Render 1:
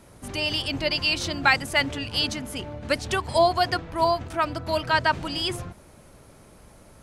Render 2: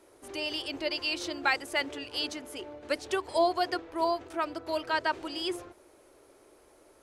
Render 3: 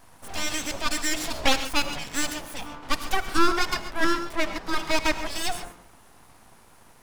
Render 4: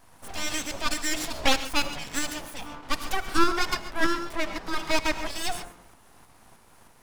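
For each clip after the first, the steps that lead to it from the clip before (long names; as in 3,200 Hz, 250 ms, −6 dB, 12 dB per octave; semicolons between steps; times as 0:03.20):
low shelf with overshoot 250 Hz −11.5 dB, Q 3; level −8 dB
full-wave rectification; reverb whose tail is shaped and stops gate 160 ms rising, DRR 10 dB; level +8 dB
shaped tremolo saw up 3.2 Hz, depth 35%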